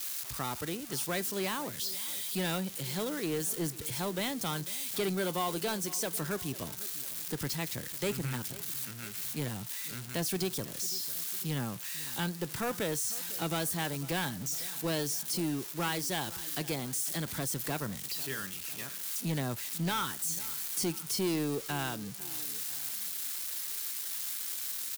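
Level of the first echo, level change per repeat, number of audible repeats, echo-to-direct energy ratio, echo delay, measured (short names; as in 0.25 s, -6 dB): -18.5 dB, -5.0 dB, 2, -17.5 dB, 0.499 s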